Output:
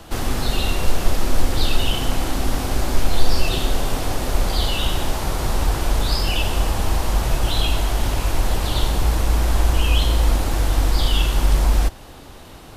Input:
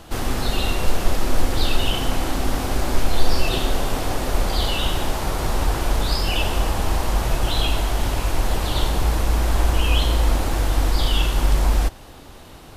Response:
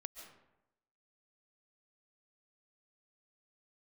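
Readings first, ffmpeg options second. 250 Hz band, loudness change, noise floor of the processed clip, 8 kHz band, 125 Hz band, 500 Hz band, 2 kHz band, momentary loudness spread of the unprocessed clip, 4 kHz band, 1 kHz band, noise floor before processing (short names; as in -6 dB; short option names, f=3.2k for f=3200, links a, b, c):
0.0 dB, +1.0 dB, -40 dBFS, +1.5 dB, +1.5 dB, -0.5 dB, 0.0 dB, 4 LU, +0.5 dB, -0.5 dB, -41 dBFS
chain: -filter_complex "[0:a]acrossover=split=210|3000[a][b][c];[b]acompressor=threshold=-29dB:ratio=2[d];[a][d][c]amix=inputs=3:normalize=0,volume=1.5dB"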